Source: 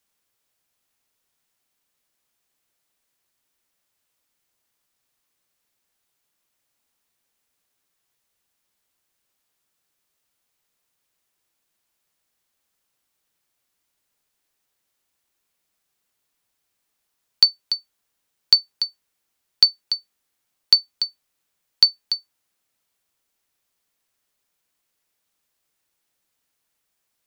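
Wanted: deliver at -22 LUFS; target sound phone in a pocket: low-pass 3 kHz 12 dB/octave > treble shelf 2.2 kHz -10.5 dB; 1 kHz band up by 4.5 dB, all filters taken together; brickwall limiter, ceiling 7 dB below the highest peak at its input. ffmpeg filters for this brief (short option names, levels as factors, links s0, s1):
-af "equalizer=f=1000:t=o:g=8,alimiter=limit=0.398:level=0:latency=1,lowpass=3000,highshelf=f=2200:g=-10.5,volume=7.94"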